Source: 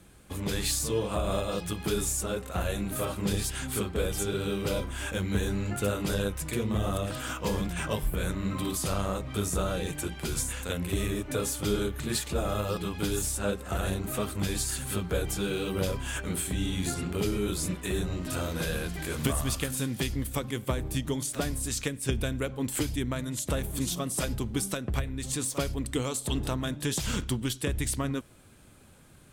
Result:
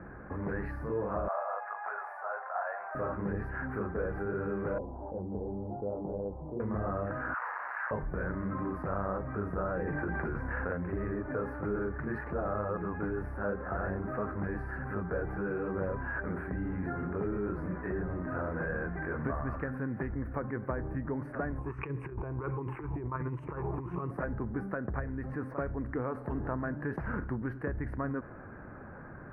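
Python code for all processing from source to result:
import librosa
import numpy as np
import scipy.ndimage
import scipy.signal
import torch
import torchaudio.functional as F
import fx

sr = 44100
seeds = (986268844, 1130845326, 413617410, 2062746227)

y = fx.chain(x, sr, fx.ellip_highpass(hz=700.0, order=4, stop_db=60),
    fx.tilt_shelf(db=9.0, hz=1500.0), at=(1.28, 2.95))
y = fx.chain(y, sr, fx.ellip_lowpass(hz=850.0, order=4, stop_db=50),
    fx.low_shelf(hz=430.0, db=-8.0), at=(4.78, 6.6))
y = fx.chain(y, sr, fx.clip_1bit(),
    fx.highpass(hz=920.0, slope=24), at=(7.34, 7.91))
y = fx.chain(y, sr, fx.lowpass(hz=7800.0, slope=12),
    fx.env_flatten(amount_pct=100), at=(9.76, 10.73))
y = fx.chain(y, sr, fx.ripple_eq(per_octave=0.7, db=15),
    fx.over_compress(threshold_db=-32.0, ratio=-0.5),
    fx.bell_lfo(hz=1.4, low_hz=670.0, high_hz=3400.0, db=10), at=(21.58, 24.11))
y = scipy.signal.sosfilt(scipy.signal.ellip(4, 1.0, 50, 1700.0, 'lowpass', fs=sr, output='sos'), y)
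y = fx.tilt_eq(y, sr, slope=1.5)
y = fx.env_flatten(y, sr, amount_pct=50)
y = y * librosa.db_to_amplitude(-3.0)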